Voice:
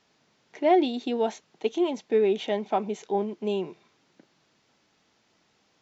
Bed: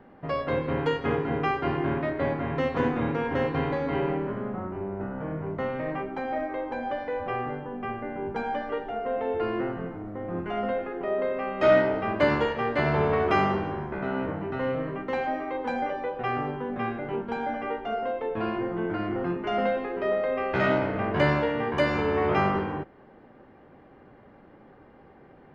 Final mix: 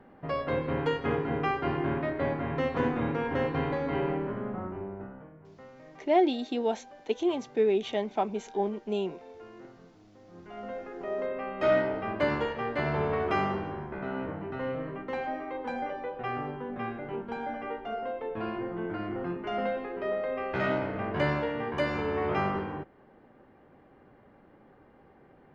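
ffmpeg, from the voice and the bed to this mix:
-filter_complex "[0:a]adelay=5450,volume=-2.5dB[a];[1:a]volume=12.5dB,afade=t=out:st=4.67:d=0.64:silence=0.133352,afade=t=in:st=10.32:d=0.85:silence=0.177828[b];[a][b]amix=inputs=2:normalize=0"

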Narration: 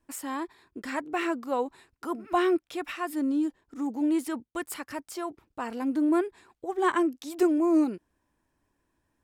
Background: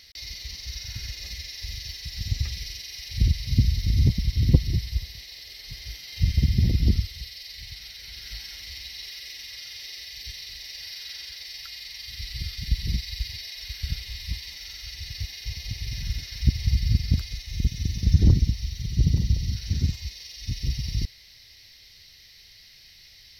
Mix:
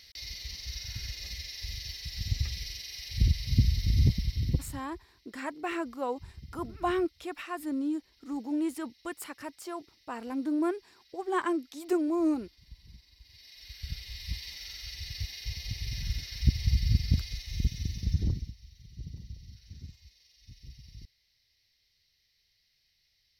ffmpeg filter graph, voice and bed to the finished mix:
-filter_complex "[0:a]adelay=4500,volume=-4.5dB[a];[1:a]volume=19dB,afade=t=out:st=4.06:d=0.78:silence=0.0749894,afade=t=in:st=13.23:d=1.25:silence=0.0749894,afade=t=out:st=17.53:d=1.02:silence=0.125893[b];[a][b]amix=inputs=2:normalize=0"

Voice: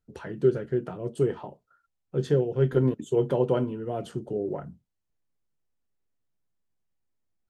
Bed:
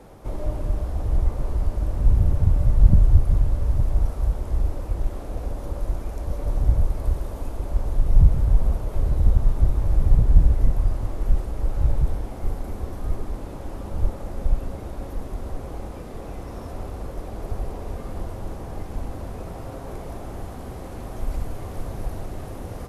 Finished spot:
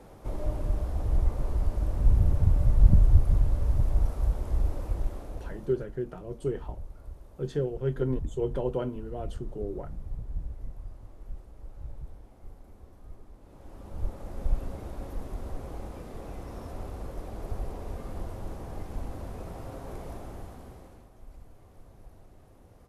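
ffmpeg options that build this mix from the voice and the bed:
-filter_complex "[0:a]adelay=5250,volume=-6dB[a];[1:a]volume=11dB,afade=t=out:st=4.88:d=0.98:silence=0.149624,afade=t=in:st=13.4:d=1.17:silence=0.177828,afade=t=out:st=20.09:d=1.01:silence=0.158489[b];[a][b]amix=inputs=2:normalize=0"

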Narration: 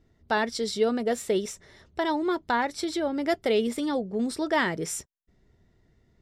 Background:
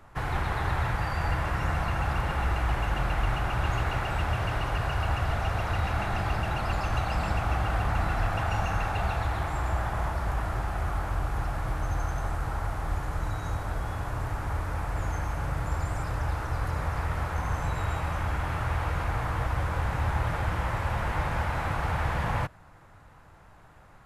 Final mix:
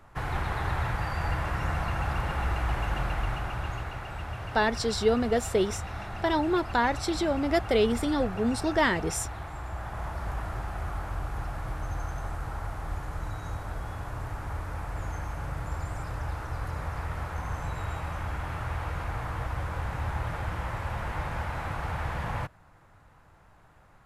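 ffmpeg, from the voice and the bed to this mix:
-filter_complex "[0:a]adelay=4250,volume=0.5dB[a];[1:a]volume=3dB,afade=t=out:st=2.96:d=0.98:silence=0.446684,afade=t=in:st=9.71:d=0.55:silence=0.595662[b];[a][b]amix=inputs=2:normalize=0"

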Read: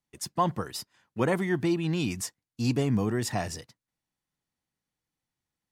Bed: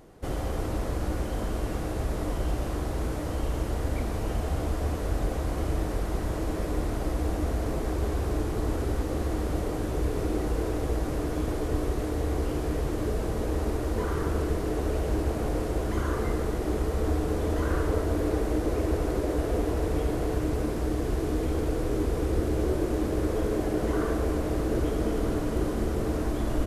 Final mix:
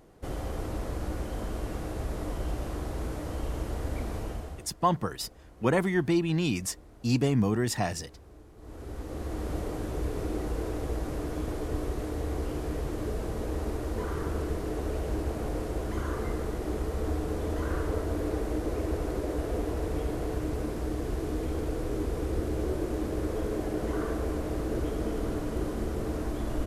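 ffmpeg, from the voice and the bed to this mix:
-filter_complex "[0:a]adelay=4450,volume=1dB[a];[1:a]volume=15.5dB,afade=t=out:st=4.17:d=0.52:silence=0.105925,afade=t=in:st=8.57:d=0.94:silence=0.105925[b];[a][b]amix=inputs=2:normalize=0"

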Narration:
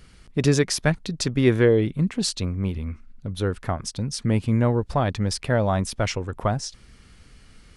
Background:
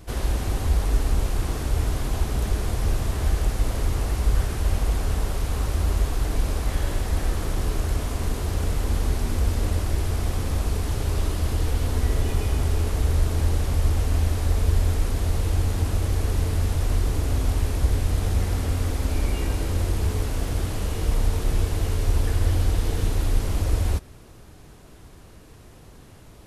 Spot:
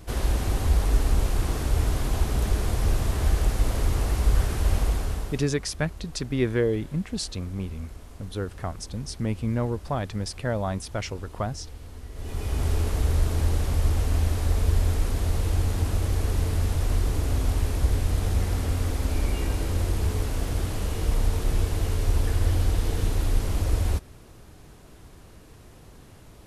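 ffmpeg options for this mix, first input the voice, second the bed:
-filter_complex "[0:a]adelay=4950,volume=-6dB[a];[1:a]volume=16.5dB,afade=t=out:st=4.79:d=0.71:silence=0.125893,afade=t=in:st=12.13:d=0.56:silence=0.149624[b];[a][b]amix=inputs=2:normalize=0"

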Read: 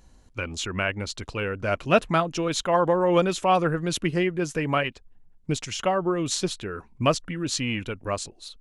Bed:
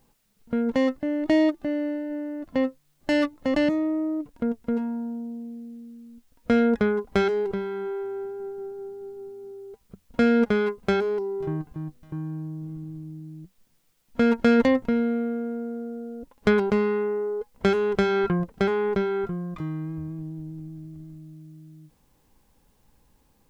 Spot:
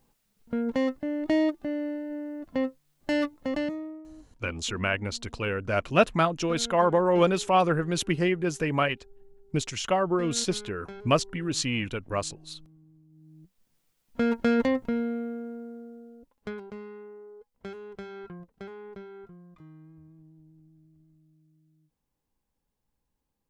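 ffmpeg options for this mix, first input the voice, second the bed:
-filter_complex "[0:a]adelay=4050,volume=-1dB[a];[1:a]volume=11.5dB,afade=t=out:st=3.34:d=0.7:silence=0.149624,afade=t=in:st=13.09:d=0.69:silence=0.16788,afade=t=out:st=14.95:d=1.65:silence=0.199526[b];[a][b]amix=inputs=2:normalize=0"

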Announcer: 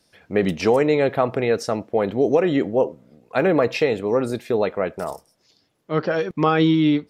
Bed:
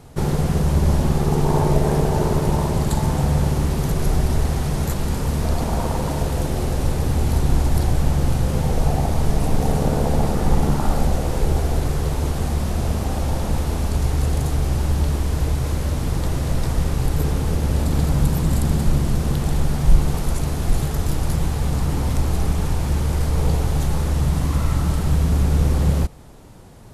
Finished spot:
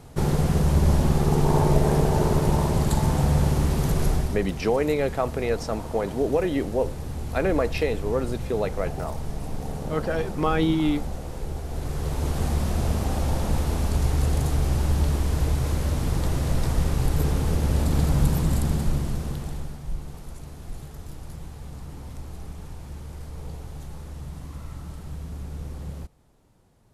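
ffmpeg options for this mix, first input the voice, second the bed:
-filter_complex "[0:a]adelay=4000,volume=-5.5dB[a];[1:a]volume=8dB,afade=t=out:st=4.03:d=0.37:silence=0.298538,afade=t=in:st=11.66:d=0.78:silence=0.316228,afade=t=out:st=18.29:d=1.52:silence=0.177828[b];[a][b]amix=inputs=2:normalize=0"

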